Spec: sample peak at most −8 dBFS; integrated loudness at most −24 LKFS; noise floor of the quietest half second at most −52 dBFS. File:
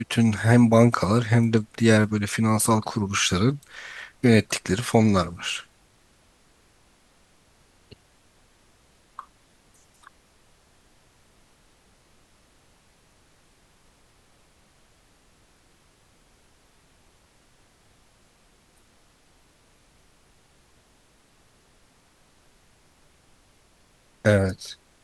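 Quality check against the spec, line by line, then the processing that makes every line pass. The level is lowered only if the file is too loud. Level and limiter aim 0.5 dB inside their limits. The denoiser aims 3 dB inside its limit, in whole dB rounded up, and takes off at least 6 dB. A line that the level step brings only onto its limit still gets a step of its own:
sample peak −2.5 dBFS: out of spec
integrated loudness −21.5 LKFS: out of spec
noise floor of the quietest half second −60 dBFS: in spec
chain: level −3 dB
brickwall limiter −8.5 dBFS

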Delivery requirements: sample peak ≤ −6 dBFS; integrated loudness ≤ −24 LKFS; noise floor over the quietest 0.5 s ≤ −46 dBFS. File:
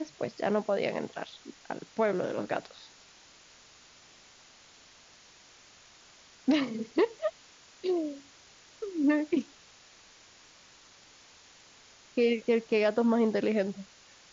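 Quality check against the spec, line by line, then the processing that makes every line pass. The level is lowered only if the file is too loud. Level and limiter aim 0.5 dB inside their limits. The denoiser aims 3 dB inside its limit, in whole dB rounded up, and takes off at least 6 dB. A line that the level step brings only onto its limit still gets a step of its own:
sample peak −15.5 dBFS: in spec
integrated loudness −30.0 LKFS: in spec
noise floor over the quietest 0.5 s −57 dBFS: in spec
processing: no processing needed

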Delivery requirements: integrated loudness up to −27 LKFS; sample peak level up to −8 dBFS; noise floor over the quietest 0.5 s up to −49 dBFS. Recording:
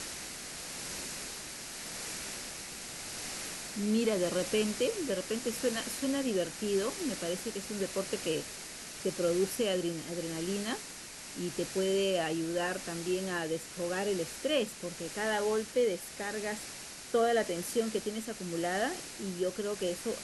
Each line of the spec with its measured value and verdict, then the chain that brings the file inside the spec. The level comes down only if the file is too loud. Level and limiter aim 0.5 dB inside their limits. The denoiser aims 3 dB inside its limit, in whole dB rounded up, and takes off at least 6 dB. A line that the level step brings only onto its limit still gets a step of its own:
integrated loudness −34.0 LKFS: in spec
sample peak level −18.0 dBFS: in spec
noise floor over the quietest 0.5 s −46 dBFS: out of spec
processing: broadband denoise 6 dB, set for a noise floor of −46 dBFS

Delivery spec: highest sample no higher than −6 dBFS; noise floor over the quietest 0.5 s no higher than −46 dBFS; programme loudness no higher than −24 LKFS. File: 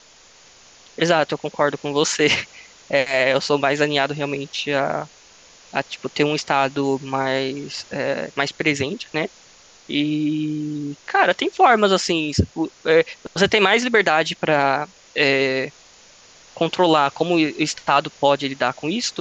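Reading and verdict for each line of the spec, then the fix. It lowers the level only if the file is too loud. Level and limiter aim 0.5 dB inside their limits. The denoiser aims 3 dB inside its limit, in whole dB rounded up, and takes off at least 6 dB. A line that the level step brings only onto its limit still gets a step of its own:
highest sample −3.5 dBFS: out of spec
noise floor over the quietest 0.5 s −49 dBFS: in spec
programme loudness −20.0 LKFS: out of spec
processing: level −4.5 dB

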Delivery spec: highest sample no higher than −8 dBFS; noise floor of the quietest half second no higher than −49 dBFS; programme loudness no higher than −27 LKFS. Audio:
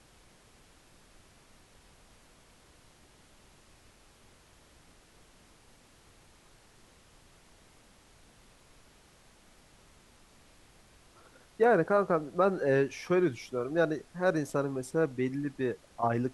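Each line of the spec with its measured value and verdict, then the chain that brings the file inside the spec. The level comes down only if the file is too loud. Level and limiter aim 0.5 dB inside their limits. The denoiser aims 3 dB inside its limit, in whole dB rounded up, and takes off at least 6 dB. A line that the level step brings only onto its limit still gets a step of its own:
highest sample −13.5 dBFS: in spec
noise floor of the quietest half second −60 dBFS: in spec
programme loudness −29.5 LKFS: in spec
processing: no processing needed

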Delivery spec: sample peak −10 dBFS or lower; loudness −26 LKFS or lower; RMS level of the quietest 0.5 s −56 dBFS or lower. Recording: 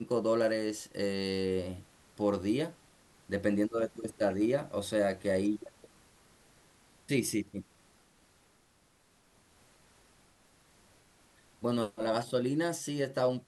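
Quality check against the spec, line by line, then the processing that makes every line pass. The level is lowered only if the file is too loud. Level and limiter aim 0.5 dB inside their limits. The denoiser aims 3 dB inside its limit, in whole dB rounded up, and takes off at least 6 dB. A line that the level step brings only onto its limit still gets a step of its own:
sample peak −15.0 dBFS: in spec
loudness −32.5 LKFS: in spec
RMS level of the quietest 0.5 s −67 dBFS: in spec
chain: no processing needed

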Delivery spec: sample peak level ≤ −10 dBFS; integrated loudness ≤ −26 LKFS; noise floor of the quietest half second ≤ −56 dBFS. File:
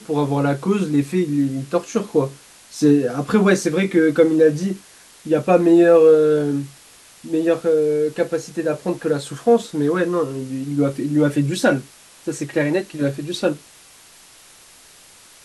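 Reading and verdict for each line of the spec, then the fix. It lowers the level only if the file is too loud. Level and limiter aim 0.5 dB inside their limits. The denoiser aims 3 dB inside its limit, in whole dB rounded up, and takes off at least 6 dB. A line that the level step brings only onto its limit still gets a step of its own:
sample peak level −3.0 dBFS: out of spec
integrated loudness −19.0 LKFS: out of spec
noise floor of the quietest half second −47 dBFS: out of spec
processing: broadband denoise 6 dB, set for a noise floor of −47 dBFS
level −7.5 dB

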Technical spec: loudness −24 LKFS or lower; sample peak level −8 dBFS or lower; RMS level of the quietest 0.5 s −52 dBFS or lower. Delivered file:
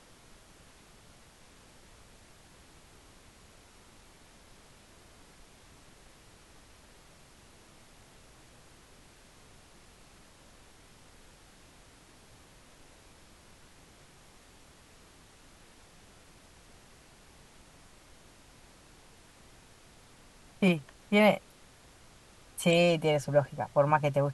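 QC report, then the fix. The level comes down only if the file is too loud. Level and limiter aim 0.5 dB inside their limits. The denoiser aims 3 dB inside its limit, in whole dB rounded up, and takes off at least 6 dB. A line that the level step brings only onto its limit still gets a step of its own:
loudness −27.5 LKFS: in spec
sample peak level −11.0 dBFS: in spec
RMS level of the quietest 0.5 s −57 dBFS: in spec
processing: no processing needed

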